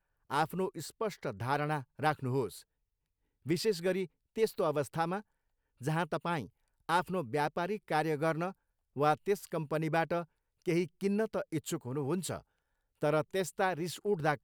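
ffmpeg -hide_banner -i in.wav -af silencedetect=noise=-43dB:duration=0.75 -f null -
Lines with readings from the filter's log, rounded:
silence_start: 2.60
silence_end: 3.46 | silence_duration: 0.86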